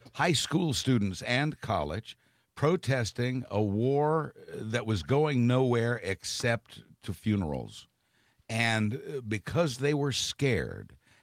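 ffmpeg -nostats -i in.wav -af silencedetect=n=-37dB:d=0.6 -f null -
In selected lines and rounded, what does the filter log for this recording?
silence_start: 7.79
silence_end: 8.50 | silence_duration: 0.70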